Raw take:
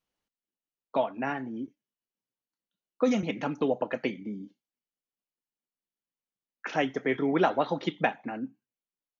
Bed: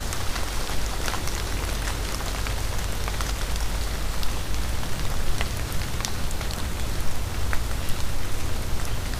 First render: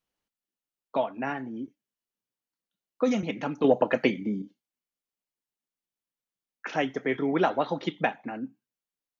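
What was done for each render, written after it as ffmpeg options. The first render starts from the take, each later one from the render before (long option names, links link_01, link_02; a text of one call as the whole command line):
ffmpeg -i in.wav -filter_complex "[0:a]asettb=1/sr,asplit=3[link_01][link_02][link_03];[link_01]atrim=end=3.644[link_04];[link_02]atrim=start=3.64:end=4.42,asetpts=PTS-STARTPTS,afade=type=in:duration=0.004:curve=qsin,afade=type=out:start_time=0.776:duration=0.004:curve=qsin,acontrast=78[link_05];[link_03]atrim=start=4.416[link_06];[link_04][link_05]acrossfade=duration=0.004:curve1=hsin:curve2=qsin[link_07];[link_07][link_06]acrossfade=duration=0.004:curve1=qsin:curve2=hsin" out.wav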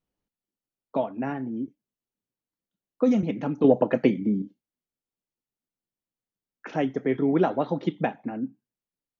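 ffmpeg -i in.wav -af "tiltshelf=frequency=660:gain=7" out.wav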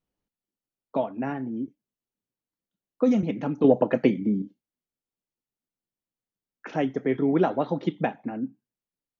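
ffmpeg -i in.wav -af anull out.wav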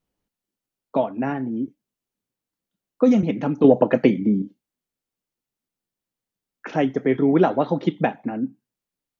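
ffmpeg -i in.wav -af "volume=5dB,alimiter=limit=-3dB:level=0:latency=1" out.wav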